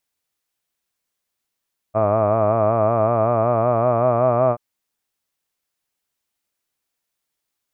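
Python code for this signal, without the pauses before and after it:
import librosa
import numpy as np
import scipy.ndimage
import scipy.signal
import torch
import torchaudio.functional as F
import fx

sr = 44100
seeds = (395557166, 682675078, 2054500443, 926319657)

y = fx.vowel(sr, seeds[0], length_s=2.63, word='hud', hz=105.0, glide_st=3.0, vibrato_hz=5.3, vibrato_st=0.9)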